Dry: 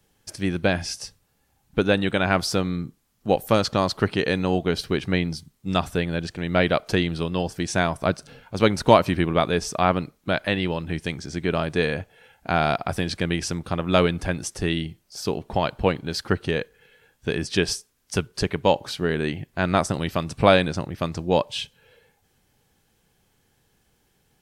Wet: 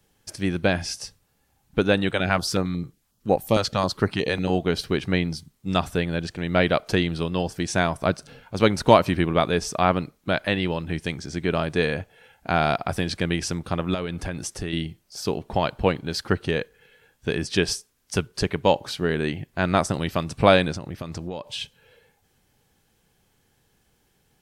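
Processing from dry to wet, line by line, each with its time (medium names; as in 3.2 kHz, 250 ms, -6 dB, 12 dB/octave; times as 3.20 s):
2.11–4.50 s: step-sequenced notch 11 Hz 230–3100 Hz
13.94–14.73 s: compression, threshold -25 dBFS
20.74–21.61 s: compression 16:1, threshold -27 dBFS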